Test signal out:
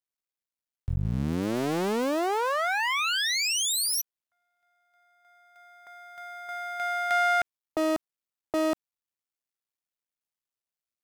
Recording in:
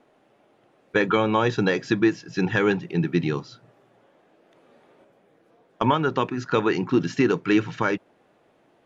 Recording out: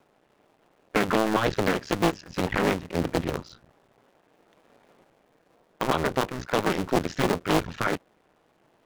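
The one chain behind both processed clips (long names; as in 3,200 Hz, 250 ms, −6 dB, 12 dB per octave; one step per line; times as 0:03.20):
sub-harmonics by changed cycles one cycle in 2, muted
highs frequency-modulated by the lows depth 0.78 ms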